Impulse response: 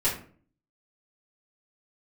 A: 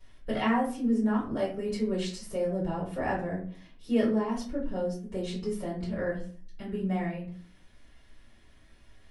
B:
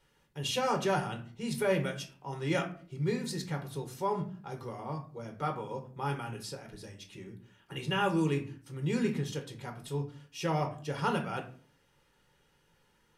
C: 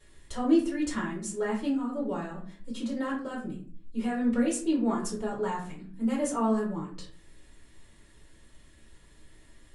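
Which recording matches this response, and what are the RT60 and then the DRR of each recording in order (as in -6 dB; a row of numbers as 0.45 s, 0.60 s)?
A; 0.45 s, 0.45 s, 0.45 s; -10.5 dB, 3.0 dB, -5.5 dB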